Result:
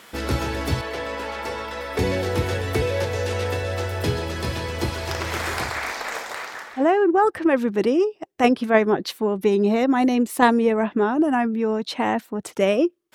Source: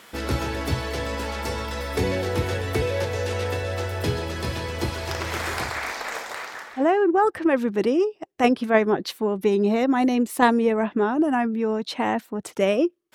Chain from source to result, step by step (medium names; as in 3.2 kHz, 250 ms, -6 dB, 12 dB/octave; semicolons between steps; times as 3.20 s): 0.81–1.99 s: tone controls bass -12 dB, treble -8 dB; trim +1.5 dB